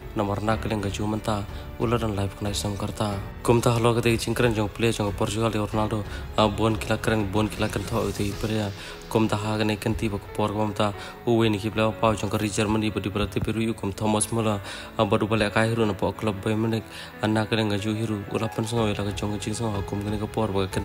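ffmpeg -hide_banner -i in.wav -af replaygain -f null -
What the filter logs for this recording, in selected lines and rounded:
track_gain = +5.4 dB
track_peak = 0.342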